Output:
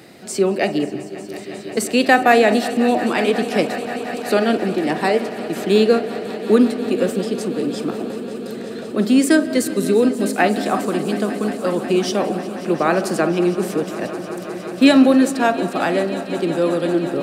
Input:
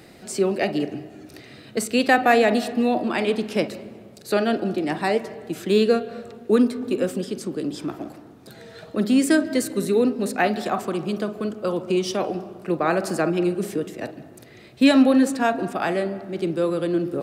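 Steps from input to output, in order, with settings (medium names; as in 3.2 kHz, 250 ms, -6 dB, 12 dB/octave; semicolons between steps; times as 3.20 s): high-pass 120 Hz; on a send: echo with a slow build-up 180 ms, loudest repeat 5, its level -18 dB; on the sum: trim +4 dB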